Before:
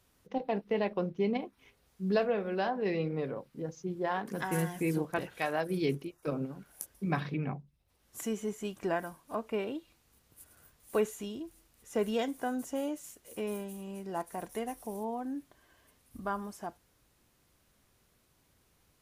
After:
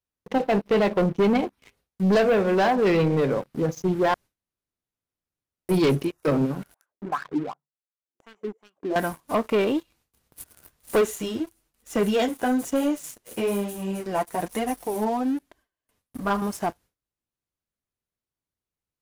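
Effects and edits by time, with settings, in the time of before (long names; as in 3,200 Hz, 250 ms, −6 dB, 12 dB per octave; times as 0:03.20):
0:04.14–0:05.69: fill with room tone
0:06.74–0:08.96: LFO wah 2.7 Hz 280–1,500 Hz, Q 6.3
0:11.01–0:16.42: flanger 1.1 Hz, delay 2.5 ms, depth 7.9 ms, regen −5%
whole clip: noise gate with hold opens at −55 dBFS; leveller curve on the samples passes 3; level +3.5 dB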